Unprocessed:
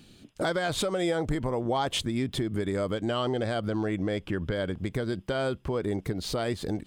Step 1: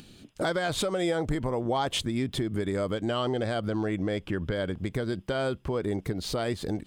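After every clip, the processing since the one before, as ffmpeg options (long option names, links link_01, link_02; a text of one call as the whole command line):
ffmpeg -i in.wav -af "acompressor=mode=upward:threshold=-46dB:ratio=2.5" out.wav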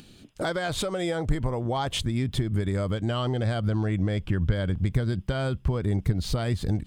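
ffmpeg -i in.wav -af "asubboost=boost=5:cutoff=160" out.wav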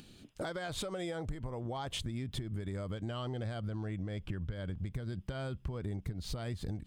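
ffmpeg -i in.wav -af "acompressor=threshold=-30dB:ratio=6,volume=-5dB" out.wav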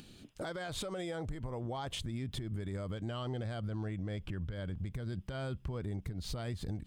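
ffmpeg -i in.wav -af "alimiter=level_in=7dB:limit=-24dB:level=0:latency=1:release=48,volume=-7dB,volume=1dB" out.wav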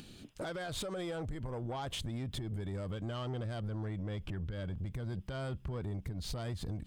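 ffmpeg -i in.wav -af "asoftclip=type=tanh:threshold=-35dB,volume=2.5dB" out.wav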